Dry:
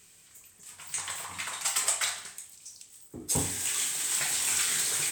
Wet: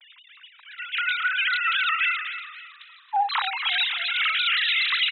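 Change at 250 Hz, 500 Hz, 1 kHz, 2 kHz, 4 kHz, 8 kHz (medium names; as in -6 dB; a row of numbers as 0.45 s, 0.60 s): under -40 dB, no reading, +14.5 dB, +14.5 dB, +10.5 dB, under -40 dB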